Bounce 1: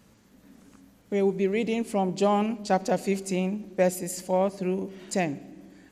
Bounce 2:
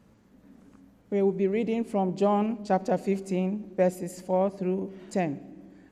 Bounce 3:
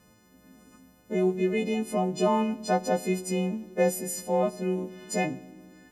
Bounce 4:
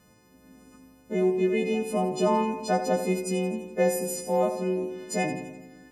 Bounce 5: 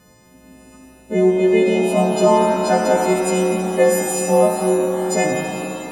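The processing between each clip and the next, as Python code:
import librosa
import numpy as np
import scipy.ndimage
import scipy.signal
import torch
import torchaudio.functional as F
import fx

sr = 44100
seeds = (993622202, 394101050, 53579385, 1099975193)

y1 = fx.high_shelf(x, sr, hz=2200.0, db=-11.5)
y2 = fx.freq_snap(y1, sr, grid_st=3)
y3 = fx.echo_feedback(y2, sr, ms=84, feedback_pct=58, wet_db=-10)
y4 = fx.rev_shimmer(y3, sr, seeds[0], rt60_s=3.3, semitones=7, shimmer_db=-8, drr_db=2.0)
y4 = y4 * 10.0 ** (7.5 / 20.0)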